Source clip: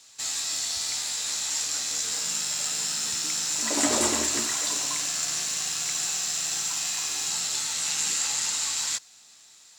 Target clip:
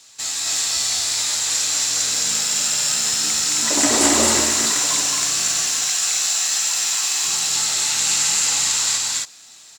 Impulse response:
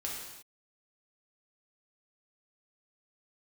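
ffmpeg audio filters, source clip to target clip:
-filter_complex "[0:a]asettb=1/sr,asplit=3[a][b][c];[a]atrim=end=5.624[d];[b]atrim=start=5.62:end=7.25,asetpts=PTS-STARTPTS,afade=t=in:d=0.004:c=qsin,afade=t=out:st=1.626:d=0.004:c=qsin,highpass=f=580:p=1[e];[c]atrim=start=7.246[f];[d][e]acrossfade=d=0.004:c1=hsin:c2=qsin[g];[g][f]acrossfade=d=0.004:c1=qsin:c2=hsin,aecho=1:1:218.7|268.2:0.794|0.794,volume=5dB"

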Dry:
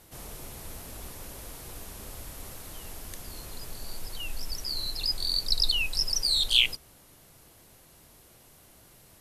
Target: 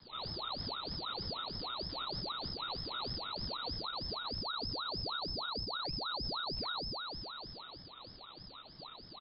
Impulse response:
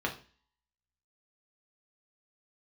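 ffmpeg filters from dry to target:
-filter_complex "[0:a]acrossover=split=750|1100[a][b][c];[c]acompressor=threshold=-41dB:ratio=16[d];[a][b][d]amix=inputs=3:normalize=0,lowshelf=f=160:t=q:w=1.5:g=11,aresample=11025,aeval=exprs='max(val(0),0)':c=same,aresample=44100,equalizer=f=65:t=o:w=0.77:g=-4.5,bandreject=f=50:t=h:w=6,bandreject=f=100:t=h:w=6[e];[1:a]atrim=start_sample=2205[f];[e][f]afir=irnorm=-1:irlink=0,asoftclip=type=tanh:threshold=-31dB,lowpass=f=2.2k:t=q:w=0.5098,lowpass=f=2.2k:t=q:w=0.6013,lowpass=f=2.2k:t=q:w=0.9,lowpass=f=2.2k:t=q:w=2.563,afreqshift=-2600,alimiter=level_in=7dB:limit=-24dB:level=0:latency=1:release=82,volume=-7dB,asplit=2[g][h];[h]adelay=30,volume=-6dB[i];[g][i]amix=inputs=2:normalize=0,aeval=exprs='val(0)*sin(2*PI*1900*n/s+1900*0.4/3.2*sin(2*PI*3.2*n/s))':c=same"

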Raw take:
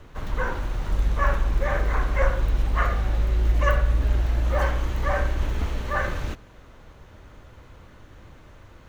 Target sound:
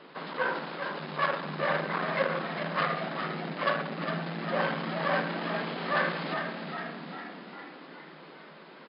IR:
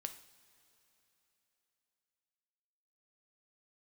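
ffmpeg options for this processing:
-filter_complex "[0:a]asoftclip=type=tanh:threshold=-21dB,bass=f=250:g=-7,treble=f=4k:g=4,asplit=9[a][b][c][d][e][f][g][h][i];[b]adelay=406,afreqshift=56,volume=-7dB[j];[c]adelay=812,afreqshift=112,volume=-11.6dB[k];[d]adelay=1218,afreqshift=168,volume=-16.2dB[l];[e]adelay=1624,afreqshift=224,volume=-20.7dB[m];[f]adelay=2030,afreqshift=280,volume=-25.3dB[n];[g]adelay=2436,afreqshift=336,volume=-29.9dB[o];[h]adelay=2842,afreqshift=392,volume=-34.5dB[p];[i]adelay=3248,afreqshift=448,volume=-39.1dB[q];[a][j][k][l][m][n][o][p][q]amix=inputs=9:normalize=0,asplit=2[r][s];[1:a]atrim=start_sample=2205[t];[s][t]afir=irnorm=-1:irlink=0,volume=5.5dB[u];[r][u]amix=inputs=2:normalize=0,afftfilt=real='re*between(b*sr/4096,150,5200)':imag='im*between(b*sr/4096,150,5200)':win_size=4096:overlap=0.75,volume=-5dB"

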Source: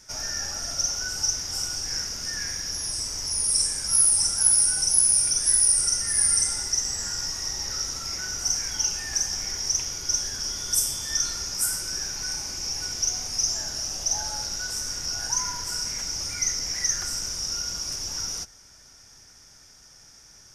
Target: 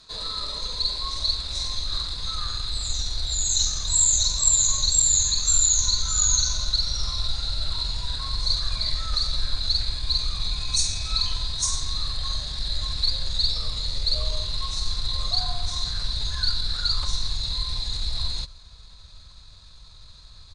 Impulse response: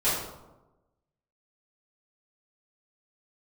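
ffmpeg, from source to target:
-af "asetrate=32097,aresample=44100,atempo=1.37395,asubboost=boost=8:cutoff=100"

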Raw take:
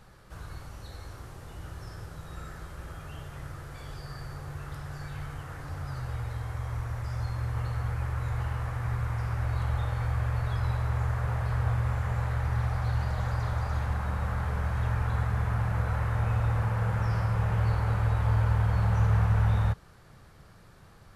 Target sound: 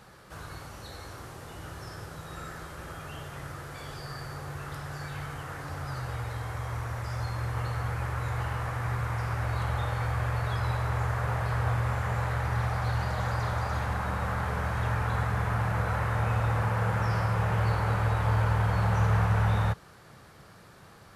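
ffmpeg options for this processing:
-af "highpass=f=180:p=1,volume=5dB"

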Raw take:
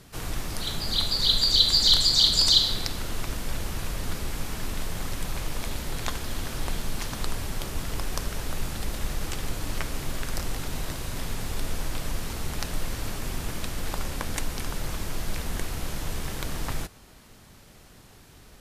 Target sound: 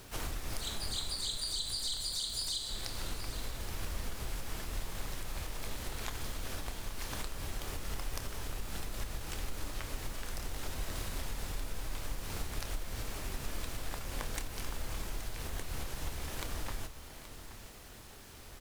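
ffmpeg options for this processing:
-filter_complex "[0:a]equalizer=f=160:w=2.1:g=-10.5,acompressor=threshold=-33dB:ratio=20,acrusher=bits=8:mix=0:aa=0.5,asplit=2[a][b];[b]asetrate=88200,aresample=44100,atempo=0.5,volume=-6dB[c];[a][c]amix=inputs=2:normalize=0,asplit=2[d][e];[e]adelay=28,volume=-11.5dB[f];[d][f]amix=inputs=2:normalize=0,aecho=1:1:825:0.224,volume=-1dB"

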